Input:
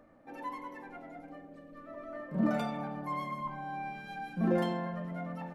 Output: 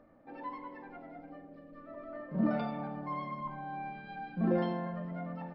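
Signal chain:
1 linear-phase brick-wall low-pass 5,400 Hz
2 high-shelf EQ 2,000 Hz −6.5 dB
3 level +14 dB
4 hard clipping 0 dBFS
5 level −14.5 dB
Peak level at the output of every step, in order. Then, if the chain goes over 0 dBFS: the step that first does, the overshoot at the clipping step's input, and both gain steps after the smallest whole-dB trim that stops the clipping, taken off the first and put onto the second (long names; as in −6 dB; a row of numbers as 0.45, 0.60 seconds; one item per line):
−17.0, −17.5, −3.5, −3.5, −18.0 dBFS
no step passes full scale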